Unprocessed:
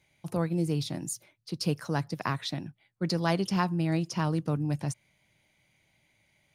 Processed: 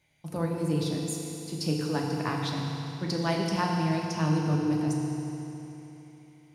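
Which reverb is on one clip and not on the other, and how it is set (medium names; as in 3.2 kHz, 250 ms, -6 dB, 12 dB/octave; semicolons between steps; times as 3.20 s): FDN reverb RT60 3.3 s, high-frequency decay 0.95×, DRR -1 dB; trim -2.5 dB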